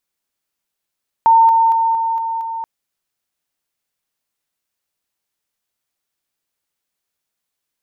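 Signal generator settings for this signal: level ladder 908 Hz -6.5 dBFS, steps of -3 dB, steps 6, 0.23 s 0.00 s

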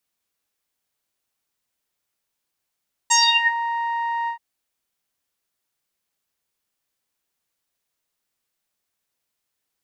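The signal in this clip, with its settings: synth note saw A#5 12 dB/octave, low-pass 1.4 kHz, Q 11, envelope 2.5 oct, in 0.44 s, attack 15 ms, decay 0.32 s, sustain -9.5 dB, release 0.10 s, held 1.18 s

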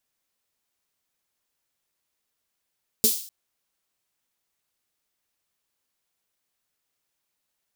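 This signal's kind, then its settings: snare drum length 0.25 s, tones 230 Hz, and 430 Hz, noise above 3.8 kHz, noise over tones 5.5 dB, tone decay 0.14 s, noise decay 0.49 s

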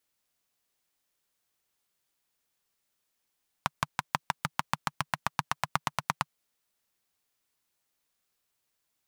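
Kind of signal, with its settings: single-cylinder engine model, changing speed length 2.63 s, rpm 700, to 1100, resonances 150/1000 Hz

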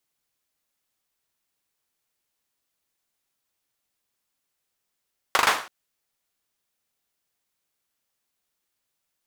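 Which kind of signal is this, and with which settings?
hand clap length 0.33 s, bursts 4, apart 40 ms, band 1.1 kHz, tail 0.40 s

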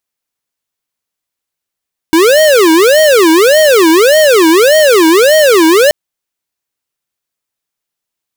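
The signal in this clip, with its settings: siren wail 318–627 Hz 1.7 per s square -6 dBFS 3.78 s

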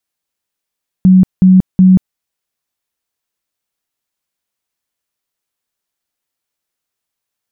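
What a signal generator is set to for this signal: tone bursts 186 Hz, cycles 34, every 0.37 s, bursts 3, -2.5 dBFS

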